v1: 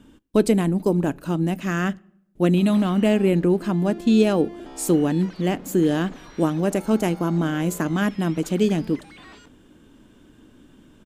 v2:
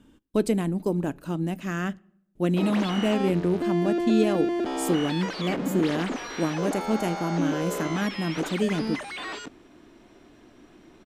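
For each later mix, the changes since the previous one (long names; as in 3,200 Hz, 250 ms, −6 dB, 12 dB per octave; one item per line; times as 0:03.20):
speech −5.5 dB
background +11.5 dB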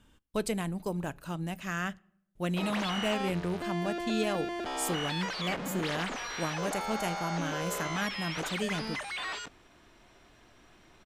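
master: add parametric band 290 Hz −13.5 dB 1.5 octaves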